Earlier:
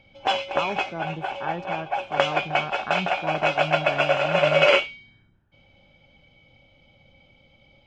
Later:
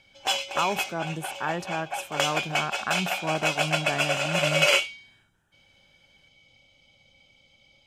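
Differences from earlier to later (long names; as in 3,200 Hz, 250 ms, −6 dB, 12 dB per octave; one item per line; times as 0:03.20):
background −9.5 dB
master: remove head-to-tape spacing loss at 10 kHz 35 dB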